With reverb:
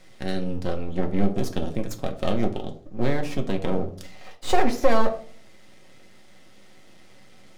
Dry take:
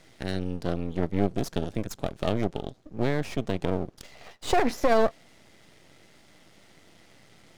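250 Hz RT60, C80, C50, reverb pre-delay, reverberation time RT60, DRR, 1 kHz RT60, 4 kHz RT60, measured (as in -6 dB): 0.65 s, 17.0 dB, 13.5 dB, 4 ms, 0.45 s, 3.0 dB, 0.40 s, 0.30 s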